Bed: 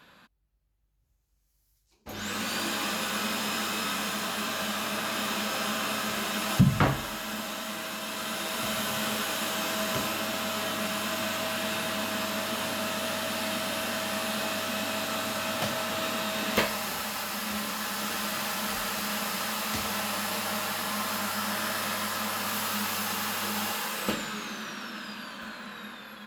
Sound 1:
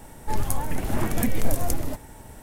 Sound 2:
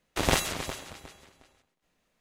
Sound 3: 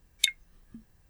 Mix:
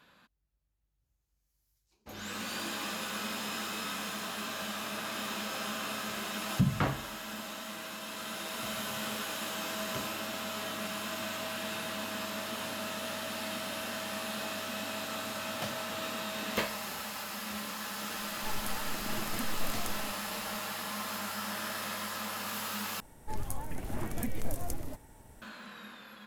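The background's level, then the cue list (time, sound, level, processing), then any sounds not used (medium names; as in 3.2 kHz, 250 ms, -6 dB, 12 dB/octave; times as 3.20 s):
bed -6.5 dB
18.16 s: add 1 -13 dB + peaking EQ 62 Hz -14.5 dB 1.2 oct
23.00 s: replace with 1 -11 dB
not used: 2, 3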